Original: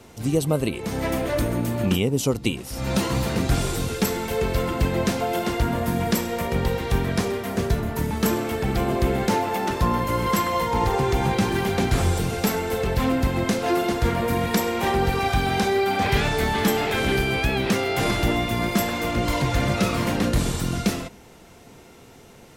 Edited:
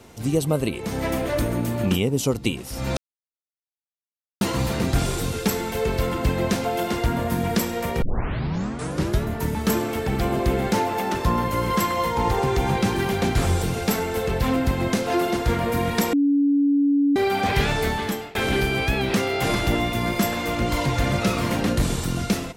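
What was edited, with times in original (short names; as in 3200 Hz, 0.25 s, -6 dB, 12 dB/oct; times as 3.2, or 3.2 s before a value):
2.97 insert silence 1.44 s
6.58 tape start 1.23 s
14.69–15.72 bleep 284 Hz -15.5 dBFS
16.39–16.91 fade out, to -23 dB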